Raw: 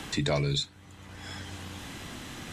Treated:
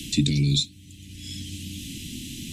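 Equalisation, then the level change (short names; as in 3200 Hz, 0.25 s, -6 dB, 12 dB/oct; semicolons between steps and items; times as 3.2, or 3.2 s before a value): elliptic band-stop 300–2700 Hz, stop band 60 dB; high shelf 7100 Hz +6.5 dB; dynamic EQ 210 Hz, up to +6 dB, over -47 dBFS, Q 1.2; +5.5 dB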